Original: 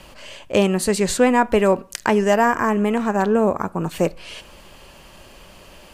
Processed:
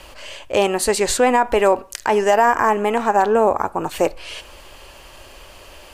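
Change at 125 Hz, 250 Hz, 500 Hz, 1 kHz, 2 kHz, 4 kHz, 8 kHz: -8.5 dB, -5.5 dB, +1.5 dB, +4.5 dB, +1.5 dB, +2.5 dB, +3.0 dB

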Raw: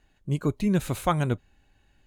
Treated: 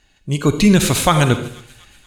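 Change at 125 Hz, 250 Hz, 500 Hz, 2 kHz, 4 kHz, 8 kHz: +10.0 dB, +11.5 dB, +11.0 dB, +15.5 dB, +19.5 dB, +20.0 dB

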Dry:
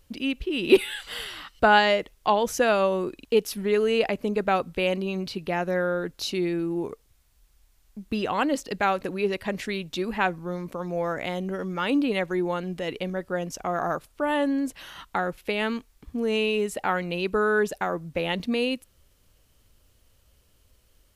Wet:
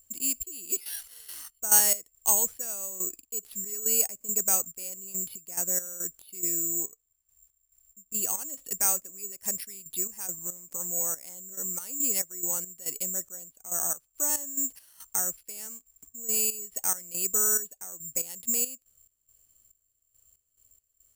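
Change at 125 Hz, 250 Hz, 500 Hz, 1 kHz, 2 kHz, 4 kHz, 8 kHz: -17.5 dB, -18.0 dB, -18.5 dB, -16.0 dB, -16.5 dB, -10.0 dB, +18.5 dB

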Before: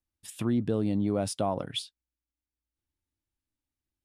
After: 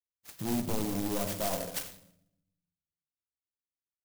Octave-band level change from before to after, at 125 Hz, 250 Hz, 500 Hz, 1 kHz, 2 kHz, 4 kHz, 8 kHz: -6.5 dB, -5.5 dB, -5.0 dB, -2.5 dB, +3.0 dB, -4.0 dB, +3.5 dB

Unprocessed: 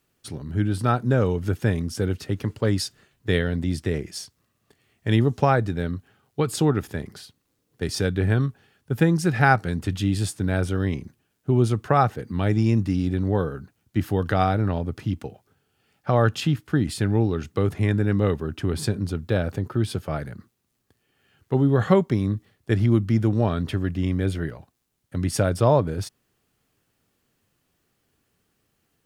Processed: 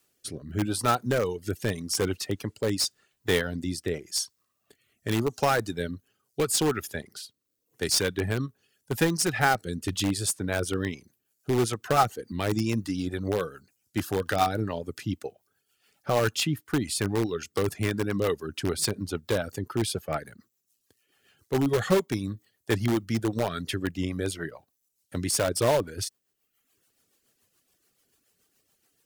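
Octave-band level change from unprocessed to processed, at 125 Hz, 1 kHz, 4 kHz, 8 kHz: -9.5 dB, -3.0 dB, +4.0 dB, +7.0 dB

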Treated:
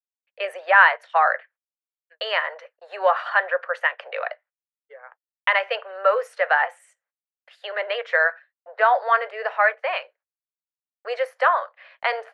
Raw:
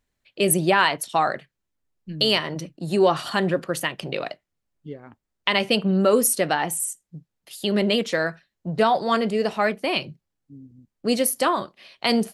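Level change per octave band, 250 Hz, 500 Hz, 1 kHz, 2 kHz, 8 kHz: under -35 dB, -2.0 dB, +3.0 dB, +7.0 dB, under -30 dB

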